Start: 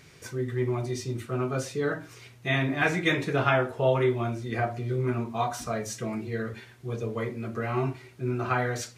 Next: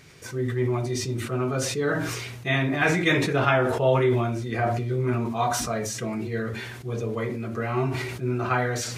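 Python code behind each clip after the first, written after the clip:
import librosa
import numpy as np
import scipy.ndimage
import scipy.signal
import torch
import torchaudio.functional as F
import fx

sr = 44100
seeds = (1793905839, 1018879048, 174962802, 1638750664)

y = fx.sustainer(x, sr, db_per_s=34.0)
y = y * 10.0 ** (2.0 / 20.0)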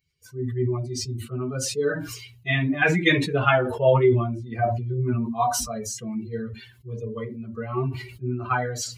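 y = fx.bin_expand(x, sr, power=2.0)
y = y * 10.0 ** (5.5 / 20.0)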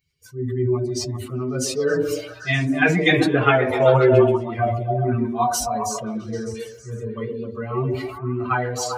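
y = fx.echo_stepped(x, sr, ms=132, hz=340.0, octaves=0.7, feedback_pct=70, wet_db=0)
y = y * 10.0 ** (2.0 / 20.0)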